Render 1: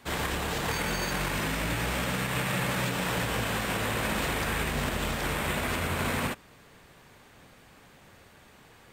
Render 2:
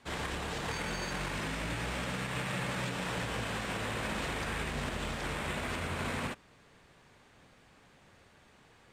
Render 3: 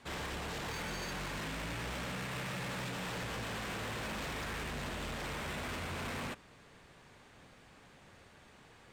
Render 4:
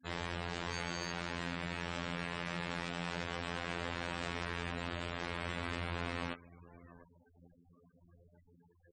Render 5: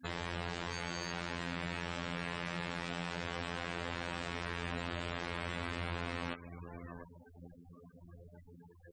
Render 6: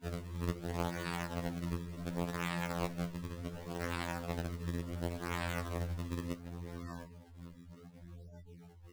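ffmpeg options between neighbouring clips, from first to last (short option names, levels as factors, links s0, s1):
-af "lowpass=8700,volume=0.501"
-af "asoftclip=type=tanh:threshold=0.0112,volume=1.26"
-af "aecho=1:1:702:0.141,afftfilt=real='hypot(re,im)*cos(PI*b)':imag='0':win_size=2048:overlap=0.75,afftfilt=real='re*gte(hypot(re,im),0.00282)':imag='im*gte(hypot(re,im),0.00282)':win_size=1024:overlap=0.75,volume=1.5"
-af "alimiter=level_in=2.11:limit=0.0631:level=0:latency=1:release=156,volume=0.473,volume=2.82"
-af "acrusher=samples=34:mix=1:aa=0.000001:lfo=1:lforange=54.4:lforate=0.69,flanger=delay=9.8:depth=3.4:regen=-44:speed=0.35:shape=triangular,afftfilt=real='re*2*eq(mod(b,4),0)':imag='im*2*eq(mod(b,4),0)':win_size=2048:overlap=0.75,volume=1.5"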